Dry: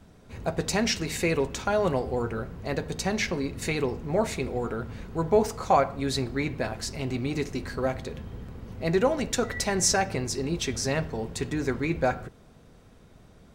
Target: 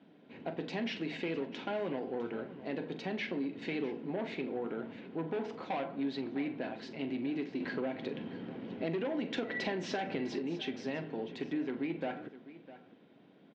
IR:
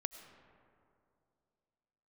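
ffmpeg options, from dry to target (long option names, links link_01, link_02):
-filter_complex "[0:a]asoftclip=type=tanh:threshold=-23.5dB,asettb=1/sr,asplit=3[link_01][link_02][link_03];[link_01]atrim=end=7.604[link_04];[link_02]atrim=start=7.6:end=10.39,asetpts=PTS-STARTPTS,afade=type=in:duration=0.004:curve=qsin,afade=type=out:start_time=2.786:duration=0.004:curve=qsin,acontrast=66[link_05];[link_03]atrim=start=10.386[link_06];[link_04][link_05]acrossfade=duration=0.004:curve1=hsin:curve2=qsin[link_07];[link_07][link_06]acrossfade=duration=0.004:curve1=qsin:curve2=hsin,highpass=frequency=180:width=0.5412,highpass=frequency=180:width=1.3066,equalizer=frequency=290:width_type=q:width=4:gain=8,equalizer=frequency=1200:width_type=q:width=4:gain=-8,equalizer=frequency=3100:width_type=q:width=4:gain=4,lowpass=frequency=3500:width=0.5412,lowpass=frequency=3500:width=1.3066,acompressor=threshold=-26dB:ratio=10,aecho=1:1:43|654:0.224|0.158,volume=-5.5dB"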